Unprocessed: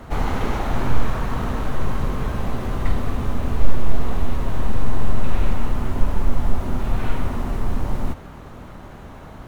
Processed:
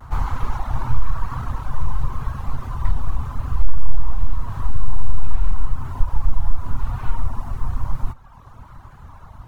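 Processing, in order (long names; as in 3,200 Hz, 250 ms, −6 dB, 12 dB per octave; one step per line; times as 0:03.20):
drawn EQ curve 120 Hz 0 dB, 190 Hz −11 dB, 420 Hz −15 dB, 630 Hz −12 dB, 1,000 Hz +1 dB, 2,000 Hz −10 dB, 3,300 Hz −10 dB, 5,100 Hz −7 dB
four-comb reverb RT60 1.5 s, combs from 33 ms, DRR 12.5 dB
in parallel at +2 dB: downward compressor, threshold −10 dBFS, peak gain reduction 9.5 dB
on the sum: pitch vibrato 0.92 Hz 51 cents
reverb reduction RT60 1 s
level −4.5 dB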